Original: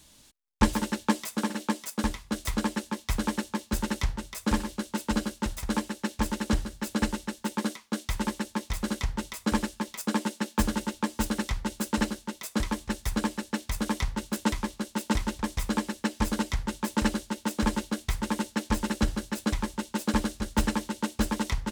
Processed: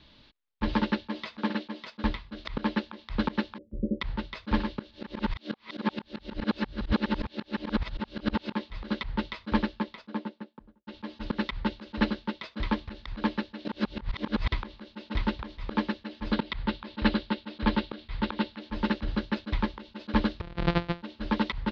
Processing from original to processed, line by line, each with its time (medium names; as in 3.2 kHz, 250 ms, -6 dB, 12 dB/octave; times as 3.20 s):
3.58–4.01 s: Chebyshev low-pass 570 Hz, order 8
4.91–8.55 s: reverse
9.42–10.87 s: studio fade out
13.65–14.52 s: reverse
16.32–18.60 s: resonant high shelf 6.1 kHz -11.5 dB, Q 1.5
20.41–21.02 s: sorted samples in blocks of 256 samples
whole clip: steep low-pass 4.4 kHz 48 dB/octave; band-stop 770 Hz, Q 12; slow attack 107 ms; trim +3 dB